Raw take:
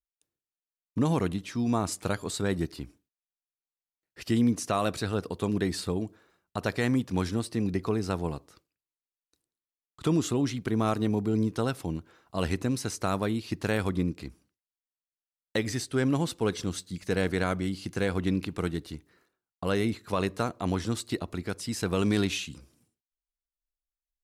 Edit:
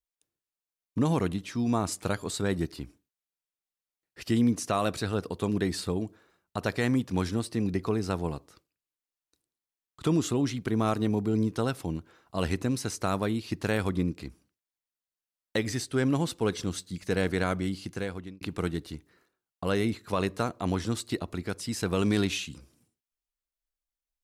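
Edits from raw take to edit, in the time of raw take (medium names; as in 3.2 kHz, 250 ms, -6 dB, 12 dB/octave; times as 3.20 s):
17.73–18.41 s: fade out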